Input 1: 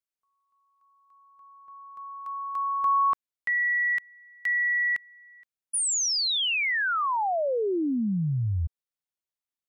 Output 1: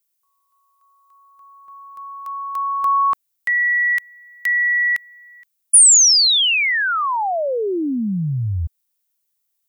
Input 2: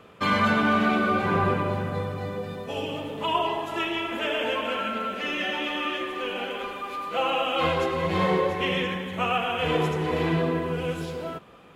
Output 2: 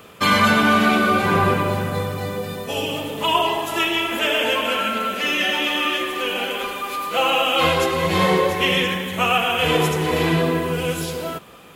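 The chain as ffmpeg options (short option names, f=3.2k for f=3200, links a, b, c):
-af "aemphasis=mode=production:type=75kf,volume=5dB"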